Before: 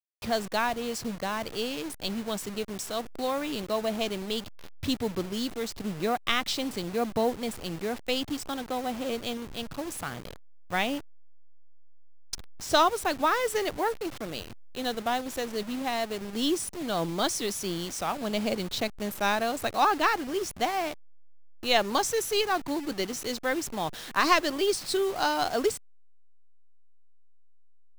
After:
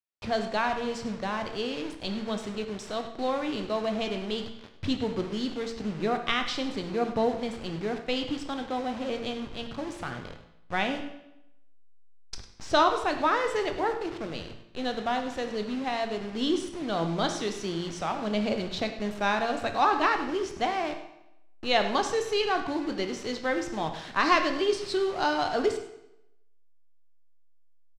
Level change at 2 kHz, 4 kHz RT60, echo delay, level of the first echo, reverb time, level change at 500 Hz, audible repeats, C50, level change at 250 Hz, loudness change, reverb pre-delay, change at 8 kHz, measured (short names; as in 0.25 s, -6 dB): 0.0 dB, 0.75 s, 0.101 s, -15.5 dB, 0.85 s, +0.5 dB, 1, 8.0 dB, +1.0 dB, 0.0 dB, 18 ms, -8.5 dB